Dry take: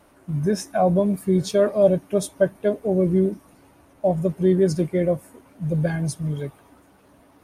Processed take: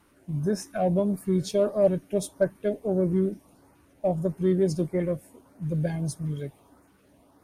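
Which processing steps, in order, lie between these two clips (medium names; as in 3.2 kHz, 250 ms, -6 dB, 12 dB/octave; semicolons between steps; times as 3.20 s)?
Chebyshev shaper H 8 -35 dB, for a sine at -6 dBFS; LFO notch saw up 1.6 Hz 550–3700 Hz; trim -4.5 dB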